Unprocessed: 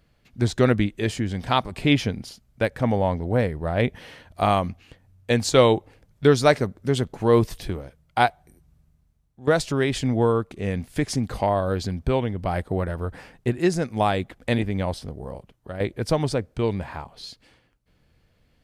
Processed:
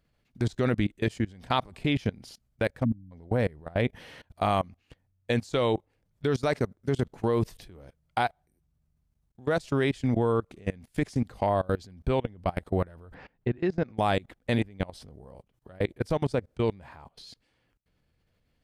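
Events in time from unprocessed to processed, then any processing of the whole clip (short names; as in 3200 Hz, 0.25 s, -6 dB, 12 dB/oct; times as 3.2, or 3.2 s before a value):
2.84–3.12 spectral delete 320–11000 Hz
13.14–13.98 air absorption 230 m
whole clip: level quantiser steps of 24 dB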